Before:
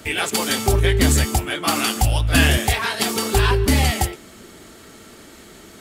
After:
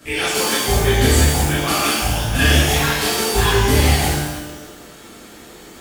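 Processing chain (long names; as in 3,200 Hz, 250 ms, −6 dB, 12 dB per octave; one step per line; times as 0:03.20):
0:01.94–0:02.39: output level in coarse steps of 19 dB
reverb with rising layers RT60 1.1 s, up +12 semitones, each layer −8 dB, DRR −11 dB
level −9 dB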